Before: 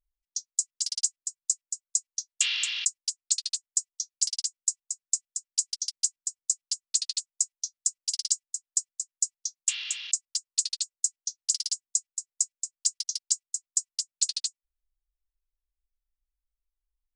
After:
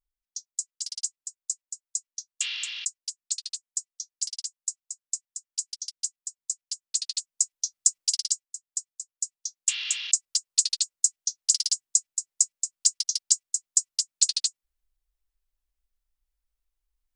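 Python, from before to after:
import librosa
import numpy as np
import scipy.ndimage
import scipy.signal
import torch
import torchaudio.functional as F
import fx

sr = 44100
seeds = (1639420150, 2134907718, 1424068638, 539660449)

y = fx.gain(x, sr, db=fx.line((6.63, -4.0), (8.01, 7.0), (8.49, -4.5), (9.15, -4.5), (9.93, 4.5)))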